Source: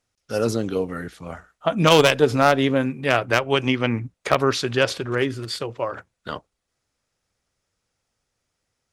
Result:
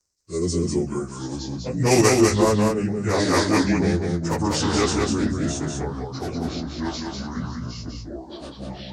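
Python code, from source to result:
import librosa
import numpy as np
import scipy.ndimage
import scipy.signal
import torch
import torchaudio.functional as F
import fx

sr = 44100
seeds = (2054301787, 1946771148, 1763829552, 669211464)

y = fx.pitch_bins(x, sr, semitones=-4.5)
y = fx.high_shelf_res(y, sr, hz=4600.0, db=10.0, q=3.0)
y = fx.echo_pitch(y, sr, ms=789, semitones=-4, count=2, db_per_echo=-6.0)
y = fx.rotary(y, sr, hz=0.8)
y = y + 10.0 ** (-3.5 / 20.0) * np.pad(y, (int(197 * sr / 1000.0), 0))[:len(y)]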